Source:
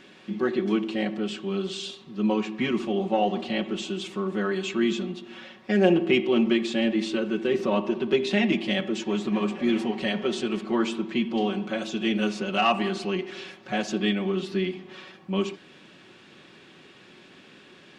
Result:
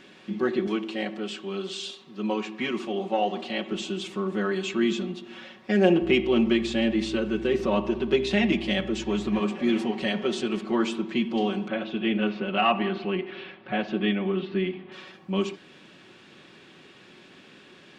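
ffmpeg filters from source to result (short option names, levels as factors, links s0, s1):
-filter_complex "[0:a]asettb=1/sr,asplit=3[s0][s1][s2];[s0]atrim=end=0.674[s3];[s1]atrim=start=0.67:end=3.72,asetpts=PTS-STARTPTS,afade=t=in:d=0.004:c=qsin,afade=t=out:st=3.046:d=0.004:c=qsin,highpass=f=350:p=1[s4];[s2]atrim=start=3.716[s5];[s3][s4]acrossfade=d=0.004:c1=hsin:c2=qsin[s6];[s6][s5]acrossfade=d=0.004:c1=qsin:c2=hsin,asettb=1/sr,asplit=3[s7][s8][s9];[s7]atrim=end=6.024[s10];[s8]atrim=start=6.02:end=9.4,asetpts=PTS-STARTPTS,afade=t=in:d=0.004:c=qsin,afade=t=out:st=3.376:d=0.004:c=qsin,aeval=exprs='val(0)+0.00891*(sin(2*PI*60*n/s)+sin(2*PI*2*60*n/s)/2+sin(2*PI*3*60*n/s)/3+sin(2*PI*4*60*n/s)/4+sin(2*PI*5*60*n/s)/5)':c=same[s11];[s9]atrim=start=9.396[s12];[s10][s11]acrossfade=d=0.004:c1=hsin:c2=qsin[s13];[s13][s12]acrossfade=d=0.004:c1=qsin:c2=hsin,asettb=1/sr,asplit=3[s14][s15][s16];[s14]atrim=end=11.684[s17];[s15]atrim=start=11.68:end=14.92,asetpts=PTS-STARTPTS,afade=t=in:d=0.004:c=qsin,afade=t=out:st=3.236:d=0.004:c=qsin,lowpass=f=3300:w=0.5412,lowpass=f=3300:w=1.3066[s18];[s16]atrim=start=14.916[s19];[s17][s18]acrossfade=d=0.004:c1=hsin:c2=qsin[s20];[s20][s19]acrossfade=d=0.004:c1=qsin:c2=hsin"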